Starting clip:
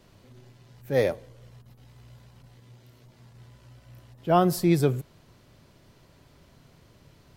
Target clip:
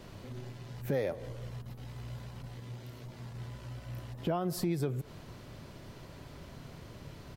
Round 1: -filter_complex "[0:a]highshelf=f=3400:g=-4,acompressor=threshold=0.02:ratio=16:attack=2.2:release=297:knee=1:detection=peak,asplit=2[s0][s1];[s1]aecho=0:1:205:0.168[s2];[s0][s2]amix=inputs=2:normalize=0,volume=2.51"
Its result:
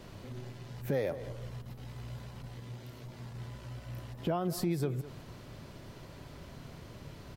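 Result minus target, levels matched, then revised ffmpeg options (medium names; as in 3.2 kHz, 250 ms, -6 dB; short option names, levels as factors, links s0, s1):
echo-to-direct +10.5 dB
-filter_complex "[0:a]highshelf=f=3400:g=-4,acompressor=threshold=0.02:ratio=16:attack=2.2:release=297:knee=1:detection=peak,asplit=2[s0][s1];[s1]aecho=0:1:205:0.0501[s2];[s0][s2]amix=inputs=2:normalize=0,volume=2.51"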